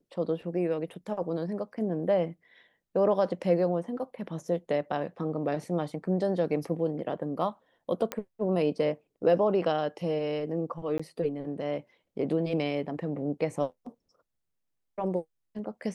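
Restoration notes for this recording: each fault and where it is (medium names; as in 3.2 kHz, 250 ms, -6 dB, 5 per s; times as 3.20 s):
8.12 s: pop -15 dBFS
10.98–10.99 s: dropout 15 ms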